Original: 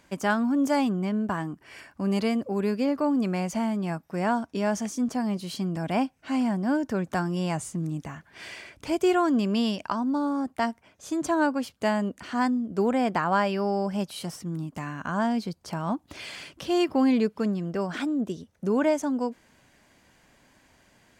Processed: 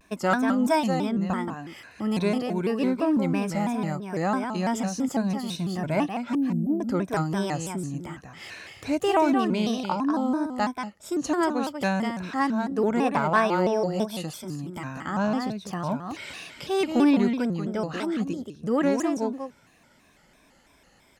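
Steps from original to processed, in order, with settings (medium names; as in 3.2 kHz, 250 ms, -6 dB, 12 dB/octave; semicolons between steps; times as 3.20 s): drifting ripple filter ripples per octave 1.6, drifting -0.3 Hz, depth 10 dB; 6.34–6.81 s: inverse Chebyshev band-stop 990–6100 Hz, stop band 50 dB; Chebyshev shaper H 3 -21 dB, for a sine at -9.5 dBFS; on a send: delay 188 ms -6.5 dB; on the sum: vibrato with a chosen wave square 3 Hz, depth 160 cents; trim +1.5 dB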